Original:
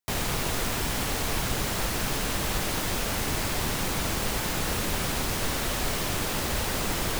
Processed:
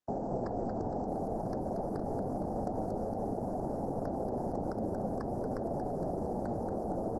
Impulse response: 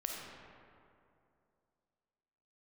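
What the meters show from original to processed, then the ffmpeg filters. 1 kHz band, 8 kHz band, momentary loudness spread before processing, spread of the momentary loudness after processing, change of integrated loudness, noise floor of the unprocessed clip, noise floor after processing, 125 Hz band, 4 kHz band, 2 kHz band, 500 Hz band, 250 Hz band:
−4.5 dB, below −30 dB, 0 LU, 1 LU, −8.0 dB, −30 dBFS, −37 dBFS, −7.5 dB, below −35 dB, −28.0 dB, 0.0 dB, −1.5 dB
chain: -filter_complex "[0:a]firequalizer=gain_entry='entry(120,0);entry(190,13);entry(360,9);entry(770,11);entry(1100,-13);entry(1700,-21);entry(7000,-30);entry(12000,-23)':delay=0.05:min_phase=1,acrossover=split=270[link_01][link_02];[link_02]aeval=exprs='(mod(6.68*val(0)+1,2)-1)/6.68':channel_layout=same[link_03];[link_01][link_03]amix=inputs=2:normalize=0,acrossover=split=240|480[link_04][link_05][link_06];[link_04]acompressor=threshold=-36dB:ratio=4[link_07];[link_05]acompressor=threshold=-32dB:ratio=4[link_08];[link_06]acompressor=threshold=-30dB:ratio=4[link_09];[link_07][link_08][link_09]amix=inputs=3:normalize=0,asuperstop=centerf=2900:order=8:qfactor=0.92,asplit=2[link_10][link_11];[link_11]asplit=6[link_12][link_13][link_14][link_15][link_16][link_17];[link_12]adelay=231,afreqshift=-94,volume=-6dB[link_18];[link_13]adelay=462,afreqshift=-188,volume=-12dB[link_19];[link_14]adelay=693,afreqshift=-282,volume=-18dB[link_20];[link_15]adelay=924,afreqshift=-376,volume=-24.1dB[link_21];[link_16]adelay=1155,afreqshift=-470,volume=-30.1dB[link_22];[link_17]adelay=1386,afreqshift=-564,volume=-36.1dB[link_23];[link_18][link_19][link_20][link_21][link_22][link_23]amix=inputs=6:normalize=0[link_24];[link_10][link_24]amix=inputs=2:normalize=0,acrossover=split=4700[link_25][link_26];[link_26]acompressor=threshold=-57dB:ratio=4:attack=1:release=60[link_27];[link_25][link_27]amix=inputs=2:normalize=0,highshelf=frequency=6500:gain=10,flanger=delay=6.9:depth=2.7:regen=83:speed=0.51:shape=triangular,volume=-2.5dB" -ar 48000 -c:a libopus -b:a 12k

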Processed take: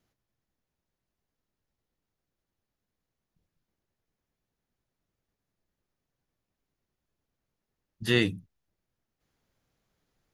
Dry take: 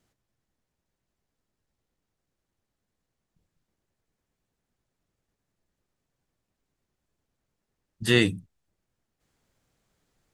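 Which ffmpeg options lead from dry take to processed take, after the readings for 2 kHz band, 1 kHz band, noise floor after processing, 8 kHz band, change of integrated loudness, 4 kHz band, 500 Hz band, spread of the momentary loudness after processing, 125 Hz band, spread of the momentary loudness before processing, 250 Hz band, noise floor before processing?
−3.5 dB, −3.5 dB, below −85 dBFS, −7.5 dB, −3.5 dB, −3.5 dB, −3.5 dB, 15 LU, −3.5 dB, 15 LU, −3.5 dB, −84 dBFS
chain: -af "equalizer=frequency=8200:width_type=o:width=0.21:gain=-14.5,volume=-3.5dB"

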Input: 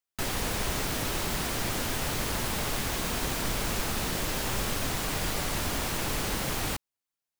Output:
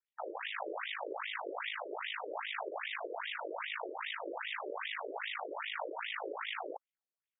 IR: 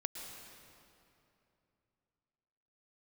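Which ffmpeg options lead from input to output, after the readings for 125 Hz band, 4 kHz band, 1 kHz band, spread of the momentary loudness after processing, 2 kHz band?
below −40 dB, −10.0 dB, −6.0 dB, 1 LU, −5.0 dB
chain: -af "aeval=exprs='val(0)*sin(2*PI*26*n/s)':channel_layout=same,highpass=290,afftfilt=real='re*between(b*sr/1024,420*pow(2700/420,0.5+0.5*sin(2*PI*2.5*pts/sr))/1.41,420*pow(2700/420,0.5+0.5*sin(2*PI*2.5*pts/sr))*1.41)':imag='im*between(b*sr/1024,420*pow(2700/420,0.5+0.5*sin(2*PI*2.5*pts/sr))/1.41,420*pow(2700/420,0.5+0.5*sin(2*PI*2.5*pts/sr))*1.41)':win_size=1024:overlap=0.75,volume=3.5dB"

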